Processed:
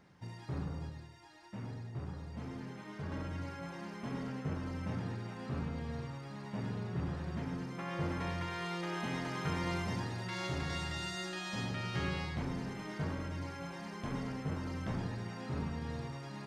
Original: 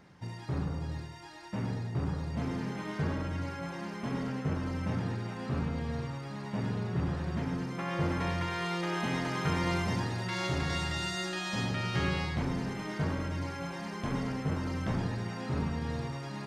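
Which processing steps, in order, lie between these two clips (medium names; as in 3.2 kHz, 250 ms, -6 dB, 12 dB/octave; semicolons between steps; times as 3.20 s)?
0.89–3.12 s: flange 1.1 Hz, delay 7.6 ms, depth 2.7 ms, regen -47%; trim -5.5 dB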